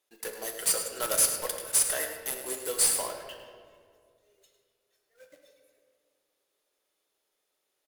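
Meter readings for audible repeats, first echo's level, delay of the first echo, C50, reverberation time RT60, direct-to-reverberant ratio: 1, -11.0 dB, 0.103 s, 5.0 dB, 2.1 s, 3.0 dB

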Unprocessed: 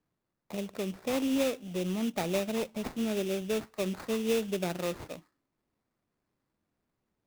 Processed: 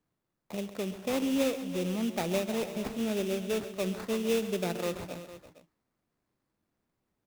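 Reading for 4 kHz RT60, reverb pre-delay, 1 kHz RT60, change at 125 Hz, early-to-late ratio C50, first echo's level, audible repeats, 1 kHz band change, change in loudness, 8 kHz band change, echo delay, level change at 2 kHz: none, none, none, +0.5 dB, none, -14.5 dB, 3, +0.5 dB, +0.5 dB, +0.5 dB, 0.134 s, +0.5 dB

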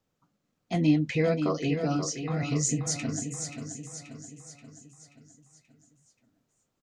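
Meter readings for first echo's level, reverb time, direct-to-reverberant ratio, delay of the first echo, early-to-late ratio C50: -8.0 dB, none, none, 0.531 s, none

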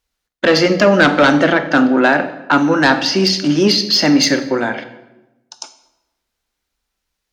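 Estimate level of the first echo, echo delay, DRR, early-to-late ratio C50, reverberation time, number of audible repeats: none, none, 9.5 dB, 12.0 dB, 1.0 s, none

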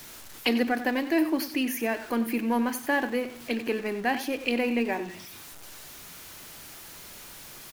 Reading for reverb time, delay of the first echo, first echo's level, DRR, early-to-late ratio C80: none, 93 ms, -13.0 dB, none, none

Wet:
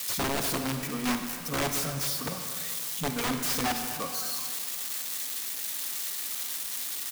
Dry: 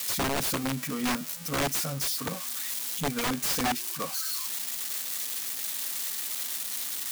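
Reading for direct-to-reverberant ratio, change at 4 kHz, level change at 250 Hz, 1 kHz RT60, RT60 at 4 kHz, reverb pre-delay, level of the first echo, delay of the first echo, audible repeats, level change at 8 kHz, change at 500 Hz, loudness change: 5.5 dB, -0.5 dB, -0.5 dB, 2.1 s, 1.4 s, 39 ms, -15.5 dB, 0.243 s, 1, -1.0 dB, -0.5 dB, -0.5 dB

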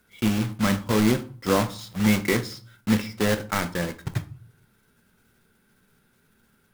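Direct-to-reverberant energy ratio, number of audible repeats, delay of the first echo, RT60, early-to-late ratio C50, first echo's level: 10.0 dB, none, none, 0.45 s, 16.5 dB, none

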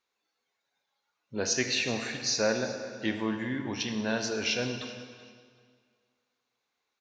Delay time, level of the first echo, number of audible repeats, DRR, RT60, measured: 0.381 s, -18.5 dB, 2, 5.5 dB, 1.9 s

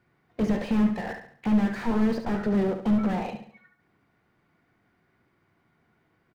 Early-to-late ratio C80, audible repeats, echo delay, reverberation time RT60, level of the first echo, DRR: none, 4, 70 ms, none, -8.5 dB, none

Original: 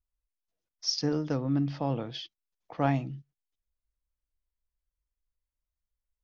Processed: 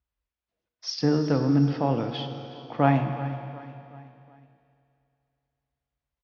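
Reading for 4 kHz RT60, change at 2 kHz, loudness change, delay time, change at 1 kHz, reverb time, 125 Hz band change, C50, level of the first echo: 2.9 s, +6.5 dB, +5.0 dB, 0.37 s, +7.5 dB, 2.8 s, +6.5 dB, 6.5 dB, -16.0 dB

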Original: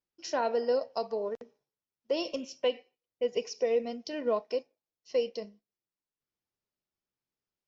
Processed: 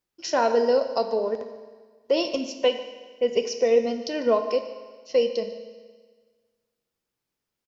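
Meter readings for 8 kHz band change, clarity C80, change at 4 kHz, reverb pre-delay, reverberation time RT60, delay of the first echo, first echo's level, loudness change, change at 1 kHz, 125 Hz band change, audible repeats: n/a, 10.5 dB, +8.0 dB, 9 ms, 1.5 s, 0.148 s, -18.5 dB, +7.5 dB, +8.0 dB, n/a, 1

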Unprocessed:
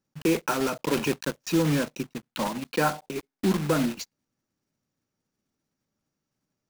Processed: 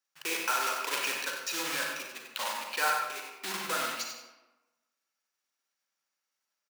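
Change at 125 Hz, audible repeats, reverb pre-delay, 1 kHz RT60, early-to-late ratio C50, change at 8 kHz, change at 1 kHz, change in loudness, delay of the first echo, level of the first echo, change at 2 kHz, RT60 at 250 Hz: -28.0 dB, 1, 36 ms, 1.1 s, 1.5 dB, +1.5 dB, -1.0 dB, -4.5 dB, 94 ms, -7.5 dB, +2.0 dB, 1.1 s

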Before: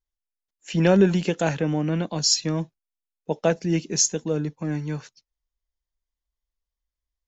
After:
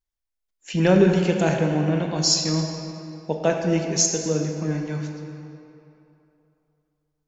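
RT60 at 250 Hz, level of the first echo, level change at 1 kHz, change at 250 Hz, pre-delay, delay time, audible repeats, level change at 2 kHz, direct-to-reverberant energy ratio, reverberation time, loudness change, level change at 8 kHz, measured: 2.7 s, none, +2.0 dB, +1.5 dB, 21 ms, none, none, +2.0 dB, 2.5 dB, 2.9 s, +1.5 dB, n/a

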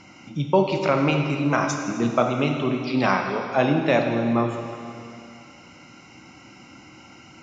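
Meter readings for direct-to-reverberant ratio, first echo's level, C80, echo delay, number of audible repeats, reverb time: 3.0 dB, none, 5.5 dB, none, none, 2.4 s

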